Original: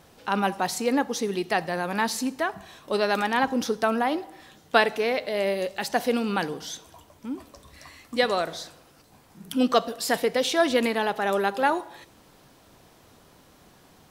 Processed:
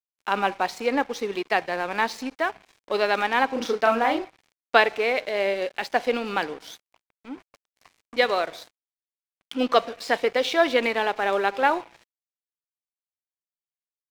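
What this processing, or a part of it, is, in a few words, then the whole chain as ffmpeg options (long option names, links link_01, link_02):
pocket radio on a weak battery: -filter_complex "[0:a]asettb=1/sr,asplit=3[link_01][link_02][link_03];[link_01]atrim=end=3.534[link_04];[link_02]atrim=start=3.53:end=4.28,asetpts=PTS-STARTPTS,afade=type=in:duration=0.004:curve=qsin,afade=type=out:start_time=0.746:duration=0.004:curve=qsin,asplit=2[link_05][link_06];[link_06]adelay=35,volume=-3dB[link_07];[link_05][link_07]amix=inputs=2:normalize=0,atrim=end_sample=33075[link_08];[link_03]atrim=start=4.276[link_09];[link_04][link_08]acrossfade=duration=0.004:curve1=hsin:curve2=qsin[link_10];[link_10][link_09]acrossfade=duration=0.004:curve1=qsin:curve2=hsin,highpass=320,lowpass=4300,aeval=exprs='sgn(val(0))*max(abs(val(0))-0.00631,0)':channel_layout=same,equalizer=frequency=2300:width_type=o:width=0.24:gain=5,volume=2.5dB"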